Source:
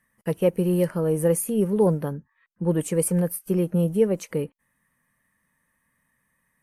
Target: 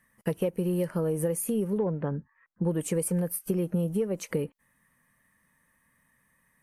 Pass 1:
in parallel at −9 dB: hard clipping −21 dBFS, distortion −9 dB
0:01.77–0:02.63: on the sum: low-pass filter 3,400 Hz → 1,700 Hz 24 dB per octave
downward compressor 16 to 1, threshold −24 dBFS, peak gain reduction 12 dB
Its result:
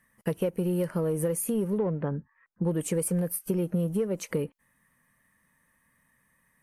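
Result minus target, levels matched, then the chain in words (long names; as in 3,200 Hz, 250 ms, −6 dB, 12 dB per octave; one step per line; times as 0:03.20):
hard clipping: distortion +15 dB
in parallel at −9 dB: hard clipping −13 dBFS, distortion −25 dB
0:01.77–0:02.63: on the sum: low-pass filter 3,400 Hz → 1,700 Hz 24 dB per octave
downward compressor 16 to 1, threshold −24 dBFS, peak gain reduction 13 dB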